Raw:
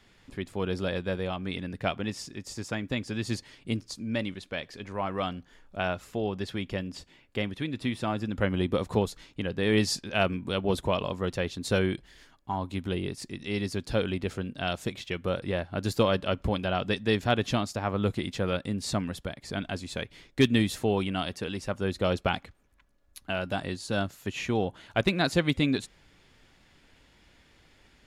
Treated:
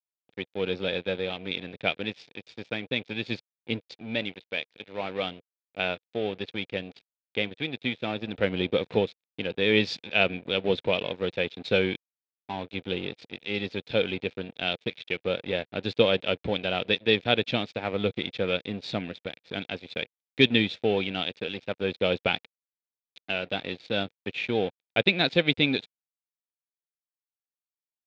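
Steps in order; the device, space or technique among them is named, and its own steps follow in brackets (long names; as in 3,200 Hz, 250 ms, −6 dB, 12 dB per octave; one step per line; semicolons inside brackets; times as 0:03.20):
blown loudspeaker (dead-zone distortion −40 dBFS; loudspeaker in its box 120–4,600 Hz, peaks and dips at 480 Hz +7 dB, 1,100 Hz −8 dB, 2,400 Hz +10 dB, 3,600 Hz +10 dB)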